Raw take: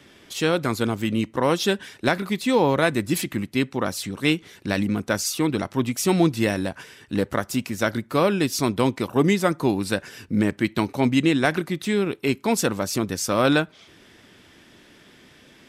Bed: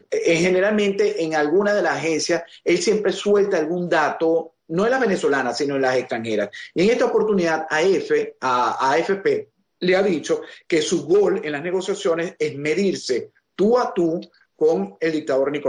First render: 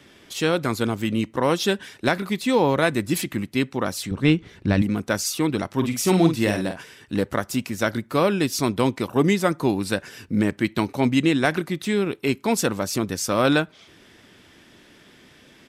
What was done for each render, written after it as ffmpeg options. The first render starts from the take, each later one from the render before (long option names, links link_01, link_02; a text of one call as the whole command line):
ffmpeg -i in.wav -filter_complex "[0:a]asettb=1/sr,asplit=3[link_01][link_02][link_03];[link_01]atrim=end=4.114[link_04];[link_02]atrim=start=4.11:end=4.82,asetpts=PTS-STARTPTS,afade=type=in:duration=0.004:curve=qsin,afade=type=out:start_time=0.706:duration=0.004:curve=qsin,aemphasis=mode=reproduction:type=bsi[link_05];[link_03]atrim=start=4.816[link_06];[link_04][link_05]acrossfade=duration=0.004:curve1=hsin:curve2=qsin[link_07];[link_07][link_06]acrossfade=duration=0.004:curve1=qsin:curve2=hsin,asplit=3[link_08][link_09][link_10];[link_08]afade=type=out:start_time=5.77:duration=0.02[link_11];[link_09]asplit=2[link_12][link_13];[link_13]adelay=48,volume=-7dB[link_14];[link_12][link_14]amix=inputs=2:normalize=0,afade=type=in:start_time=5.77:duration=0.02,afade=type=out:start_time=6.8:duration=0.02[link_15];[link_10]afade=type=in:start_time=6.8:duration=0.02[link_16];[link_11][link_15][link_16]amix=inputs=3:normalize=0" out.wav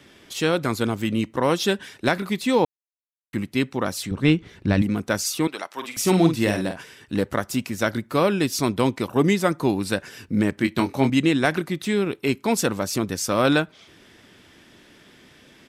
ffmpeg -i in.wav -filter_complex "[0:a]asettb=1/sr,asplit=3[link_01][link_02][link_03];[link_01]atrim=end=5.474[link_04];[link_02]atrim=start=5.47:end=5.97,asetpts=PTS-STARTPTS,afade=type=in:duration=0.004:curve=qsin,afade=type=out:start_time=0.496:duration=0.004:curve=qsin,highpass=680[link_05];[link_03]atrim=start=5.966[link_06];[link_04][link_05]acrossfade=duration=0.004:curve1=hsin:curve2=qsin[link_07];[link_07][link_06]acrossfade=duration=0.004:curve1=qsin:curve2=hsin,asettb=1/sr,asplit=3[link_08][link_09][link_10];[link_08]atrim=end=10.554[link_11];[link_09]atrim=start=10.55:end=11.1,asetpts=PTS-STARTPTS,afade=type=in:duration=0.004:curve=qsin,afade=type=out:start_time=0.546:duration=0.004:curve=qsin,asplit=2[link_12][link_13];[link_13]adelay=22,volume=-6.5dB[link_14];[link_12][link_14]amix=inputs=2:normalize=0,atrim=end_sample=24255[link_15];[link_10]atrim=start=11.096[link_16];[link_11][link_15]acrossfade=duration=0.004:curve1=hsin:curve2=qsin[link_17];[link_17][link_16]acrossfade=duration=0.004:curve1=qsin:curve2=hsin,asplit=3[link_18][link_19][link_20];[link_18]atrim=end=2.65,asetpts=PTS-STARTPTS,afade=type=out:start_time=2.646:duration=0.004:curve=hsin[link_21];[link_19]atrim=start=2.65:end=3.33,asetpts=PTS-STARTPTS,volume=0[link_22];[link_20]atrim=start=3.33,asetpts=PTS-STARTPTS,afade=type=in:duration=0.004:curve=hsin[link_23];[link_21][link_22][link_23]concat=n=3:v=0:a=1" out.wav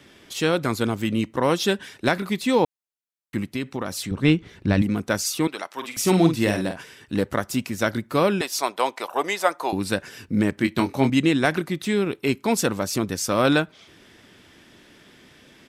ffmpeg -i in.wav -filter_complex "[0:a]asettb=1/sr,asplit=3[link_01][link_02][link_03];[link_01]atrim=end=3.494[link_04];[link_02]atrim=start=3.49:end=4.02,asetpts=PTS-STARTPTS,afade=type=in:duration=0.004:curve=qsin,afade=type=out:start_time=0.526:duration=0.004:curve=qsin,acompressor=threshold=-23dB:ratio=5:attack=3.2:release=140:knee=1:detection=peak[link_05];[link_03]atrim=start=4.016[link_06];[link_04][link_05]acrossfade=duration=0.004:curve1=hsin:curve2=qsin[link_07];[link_07][link_06]acrossfade=duration=0.004:curve1=qsin:curve2=hsin,asettb=1/sr,asplit=3[link_08][link_09][link_10];[link_08]atrim=end=8.414[link_11];[link_09]atrim=start=8.41:end=9.73,asetpts=PTS-STARTPTS,afade=type=in:duration=0.004:curve=qsin,afade=type=out:start_time=1.316:duration=0.004:curve=qsin,highpass=frequency=710:width_type=q:width=1.8[link_12];[link_10]atrim=start=9.726[link_13];[link_11][link_12]acrossfade=duration=0.004:curve1=hsin:curve2=qsin[link_14];[link_14][link_13]acrossfade=duration=0.004:curve1=qsin:curve2=hsin" out.wav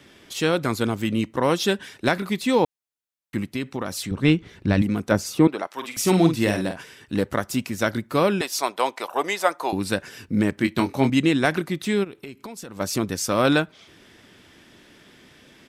ffmpeg -i in.wav -filter_complex "[0:a]asettb=1/sr,asplit=3[link_01][link_02][link_03];[link_01]atrim=end=5.114[link_04];[link_02]atrim=start=5.11:end=5.67,asetpts=PTS-STARTPTS,afade=type=in:duration=0.004:curve=qsin,afade=type=out:start_time=0.556:duration=0.004:curve=qsin,tiltshelf=frequency=1500:gain=7.5[link_05];[link_03]atrim=start=5.666[link_06];[link_04][link_05]acrossfade=duration=0.004:curve1=hsin:curve2=qsin[link_07];[link_07][link_06]acrossfade=duration=0.004:curve1=qsin:curve2=hsin,asplit=3[link_08][link_09][link_10];[link_08]afade=type=out:start_time=12.03:duration=0.02[link_11];[link_09]acompressor=threshold=-33dB:ratio=16:attack=3.2:release=140:knee=1:detection=peak,afade=type=in:start_time=12.03:duration=0.02,afade=type=out:start_time=12.79:duration=0.02[link_12];[link_10]afade=type=in:start_time=12.79:duration=0.02[link_13];[link_11][link_12][link_13]amix=inputs=3:normalize=0" out.wav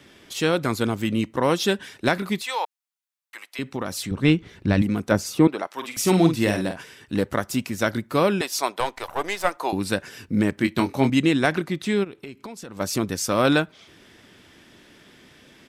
ffmpeg -i in.wav -filter_complex "[0:a]asettb=1/sr,asplit=3[link_01][link_02][link_03];[link_01]atrim=end=2.424[link_04];[link_02]atrim=start=2.42:end=3.59,asetpts=PTS-STARTPTS,afade=type=in:duration=0.004:curve=qsin,afade=type=out:start_time=1.166:duration=0.004:curve=qsin,highpass=frequency=730:width=0.5412,highpass=frequency=730:width=1.3066[link_05];[link_03]atrim=start=3.586[link_06];[link_04][link_05]acrossfade=duration=0.004:curve1=hsin:curve2=qsin[link_07];[link_07][link_06]acrossfade=duration=0.004:curve1=qsin:curve2=hsin,asettb=1/sr,asplit=3[link_08][link_09][link_10];[link_08]atrim=end=8.804[link_11];[link_09]atrim=start=8.8:end=9.57,asetpts=PTS-STARTPTS,afade=type=in:duration=0.004:curve=qsin,afade=type=out:start_time=0.766:duration=0.004:curve=qsin,aeval=exprs='if(lt(val(0),0),0.447*val(0),val(0))':channel_layout=same[link_12];[link_10]atrim=start=9.566[link_13];[link_11][link_12]acrossfade=duration=0.004:curve1=hsin:curve2=qsin[link_14];[link_14][link_13]acrossfade=duration=0.004:curve1=qsin:curve2=hsin,asettb=1/sr,asplit=3[link_15][link_16][link_17];[link_15]atrim=end=11.464[link_18];[link_16]atrim=start=11.46:end=12.77,asetpts=PTS-STARTPTS,afade=type=in:duration=0.004:curve=qsin,afade=type=out:start_time=1.306:duration=0.004:curve=qsin,highshelf=frequency=11000:gain=-10[link_19];[link_17]atrim=start=12.766[link_20];[link_18][link_19]acrossfade=duration=0.004:curve1=hsin:curve2=qsin[link_21];[link_21][link_20]acrossfade=duration=0.004:curve1=qsin:curve2=hsin" out.wav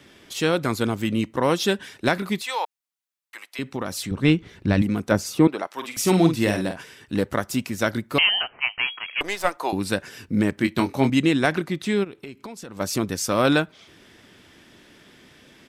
ffmpeg -i in.wav -filter_complex "[0:a]asettb=1/sr,asplit=3[link_01][link_02][link_03];[link_01]atrim=end=8.184[link_04];[link_02]atrim=start=8.18:end=9.21,asetpts=PTS-STARTPTS,afade=type=in:duration=0.004:curve=qsin,afade=type=out:start_time=1.026:duration=0.004:curve=qsin,lowpass=frequency=2800:width_type=q:width=0.5098,lowpass=frequency=2800:width_type=q:width=0.6013,lowpass=frequency=2800:width_type=q:width=0.9,lowpass=frequency=2800:width_type=q:width=2.563,afreqshift=-3300[link_05];[link_03]atrim=start=9.206[link_06];[link_04][link_05]acrossfade=duration=0.004:curve1=hsin:curve2=qsin[link_07];[link_07][link_06]acrossfade=duration=0.004:curve1=qsin:curve2=hsin" out.wav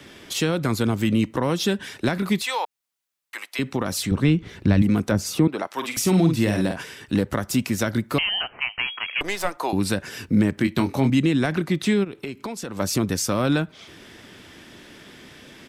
ffmpeg -i in.wav -filter_complex "[0:a]asplit=2[link_01][link_02];[link_02]alimiter=limit=-16.5dB:level=0:latency=1:release=47,volume=0dB[link_03];[link_01][link_03]amix=inputs=2:normalize=0,acrossover=split=240[link_04][link_05];[link_05]acompressor=threshold=-24dB:ratio=3[link_06];[link_04][link_06]amix=inputs=2:normalize=0" out.wav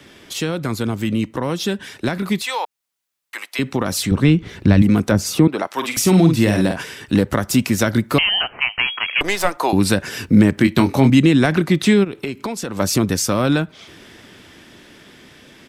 ffmpeg -i in.wav -af "dynaudnorm=framelen=340:gausssize=17:maxgain=11.5dB" out.wav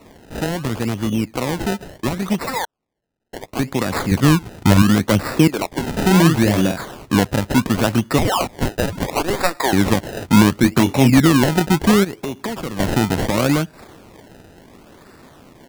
ffmpeg -i in.wav -af "acrusher=samples=27:mix=1:aa=0.000001:lfo=1:lforange=27:lforate=0.71" out.wav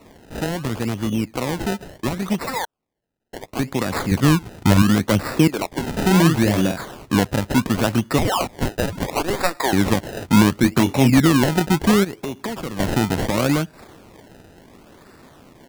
ffmpeg -i in.wav -af "volume=-2dB" out.wav